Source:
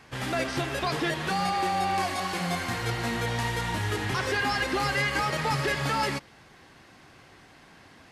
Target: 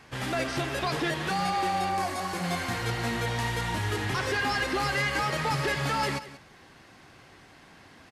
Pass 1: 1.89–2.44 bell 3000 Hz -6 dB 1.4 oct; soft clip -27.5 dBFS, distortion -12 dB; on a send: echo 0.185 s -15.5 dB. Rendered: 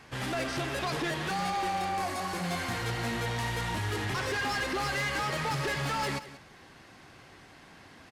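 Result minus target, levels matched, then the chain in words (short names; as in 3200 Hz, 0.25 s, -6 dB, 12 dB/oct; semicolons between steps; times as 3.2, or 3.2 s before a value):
soft clip: distortion +12 dB
1.89–2.44 bell 3000 Hz -6 dB 1.4 oct; soft clip -18.5 dBFS, distortion -23 dB; on a send: echo 0.185 s -15.5 dB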